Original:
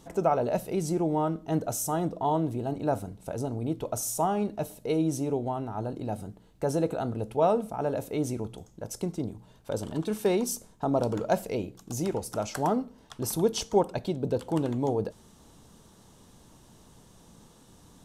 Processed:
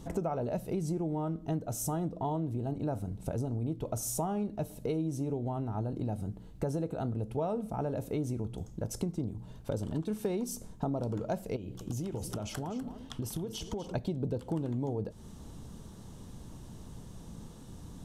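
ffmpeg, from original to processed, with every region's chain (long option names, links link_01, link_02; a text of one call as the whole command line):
ffmpeg -i in.wav -filter_complex "[0:a]asettb=1/sr,asplit=3[link_01][link_02][link_03];[link_01]atrim=end=11.564[link_04];[link_02]atrim=start=11.56:end=13.92,asetpts=PTS-STARTPTS,afade=type=in:duration=0.004:curve=qsin,afade=type=out:start_time=2.356:duration=0.004:curve=qsin,equalizer=frequency=3100:width_type=o:width=0.35:gain=8,acompressor=threshold=-37dB:ratio=10:attack=3.2:release=140:knee=1:detection=peak,aecho=1:1:248:0.224,atrim=end_sample=104076[link_05];[link_03]atrim=start=13.916[link_06];[link_04][link_05]acrossfade=duration=0.004:curve1=hsin:curve2=qsin[link_07];[link_07][link_06]acrossfade=duration=0.004:curve1=qsin:curve2=hsin,lowshelf=frequency=280:gain=12,acompressor=threshold=-31dB:ratio=5" out.wav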